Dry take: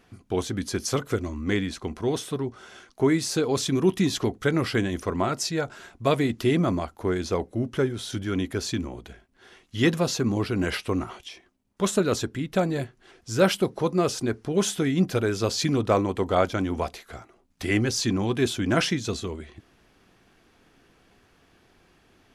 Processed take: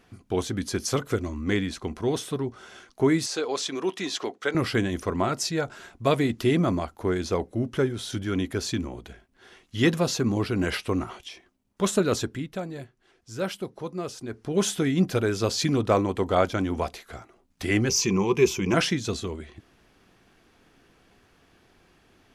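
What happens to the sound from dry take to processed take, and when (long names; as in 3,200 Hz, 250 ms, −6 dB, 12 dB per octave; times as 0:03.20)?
0:03.26–0:04.55: band-pass filter 460–7,200 Hz
0:12.17–0:14.69: duck −9.5 dB, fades 0.41 s equal-power
0:17.89–0:18.74: EQ curve with evenly spaced ripples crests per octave 0.78, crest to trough 14 dB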